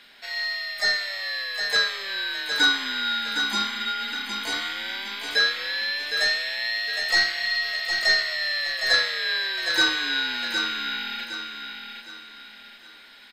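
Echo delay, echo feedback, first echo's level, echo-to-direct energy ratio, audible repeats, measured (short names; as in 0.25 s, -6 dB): 0.762 s, 37%, -6.5 dB, -6.0 dB, 4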